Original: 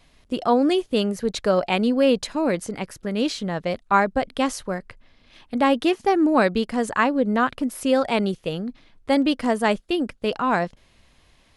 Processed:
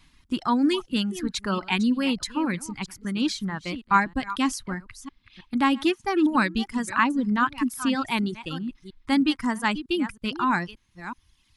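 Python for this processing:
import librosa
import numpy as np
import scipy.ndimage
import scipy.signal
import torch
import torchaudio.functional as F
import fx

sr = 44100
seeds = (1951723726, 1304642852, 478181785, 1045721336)

y = fx.reverse_delay(x, sr, ms=318, wet_db=-11)
y = fx.band_shelf(y, sr, hz=550.0, db=-15.5, octaves=1.0)
y = fx.dereverb_blind(y, sr, rt60_s=1.3)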